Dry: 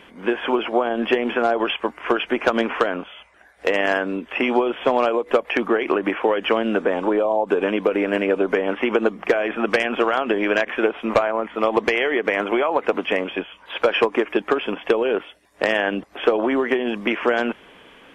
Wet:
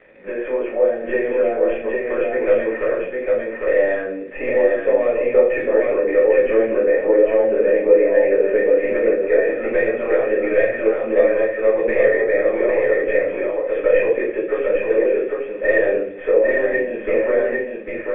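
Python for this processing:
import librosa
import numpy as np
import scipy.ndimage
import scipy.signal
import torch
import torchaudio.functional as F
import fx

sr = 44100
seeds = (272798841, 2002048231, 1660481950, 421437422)

p1 = fx.tracing_dist(x, sr, depth_ms=0.15)
p2 = fx.room_shoebox(p1, sr, seeds[0], volume_m3=53.0, walls='mixed', distance_m=2.0)
p3 = fx.dmg_crackle(p2, sr, seeds[1], per_s=550.0, level_db=-19.0)
p4 = fx.formant_cascade(p3, sr, vowel='e')
p5 = fx.peak_eq(p4, sr, hz=1300.0, db=4.0, octaves=0.21)
p6 = p5 + fx.echo_single(p5, sr, ms=802, db=-3.0, dry=0)
y = p6 * librosa.db_to_amplitude(-1.0)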